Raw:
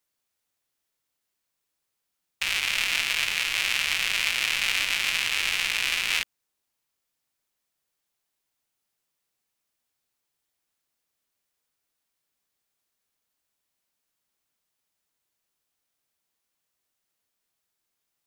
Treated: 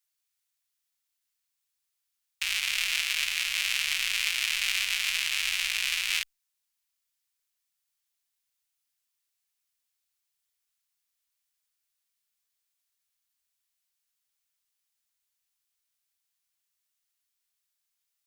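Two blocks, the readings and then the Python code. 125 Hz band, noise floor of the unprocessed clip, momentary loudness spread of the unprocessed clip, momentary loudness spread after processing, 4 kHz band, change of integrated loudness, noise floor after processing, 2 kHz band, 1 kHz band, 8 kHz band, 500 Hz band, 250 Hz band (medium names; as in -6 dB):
under -10 dB, -81 dBFS, 3 LU, 3 LU, -2.0 dB, -2.5 dB, -82 dBFS, -3.5 dB, -8.5 dB, -0.5 dB, under -15 dB, under -20 dB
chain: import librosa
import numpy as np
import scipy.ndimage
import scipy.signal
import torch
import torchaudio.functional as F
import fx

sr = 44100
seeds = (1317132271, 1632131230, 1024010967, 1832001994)

y = fx.tone_stack(x, sr, knobs='10-0-10')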